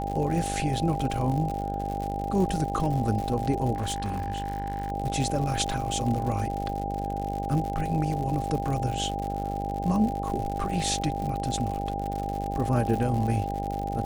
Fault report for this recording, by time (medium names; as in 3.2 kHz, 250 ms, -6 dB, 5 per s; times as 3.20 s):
buzz 50 Hz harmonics 17 -33 dBFS
crackle 110 per s -31 dBFS
whine 800 Hz -32 dBFS
3.74–4.92 s: clipped -25.5 dBFS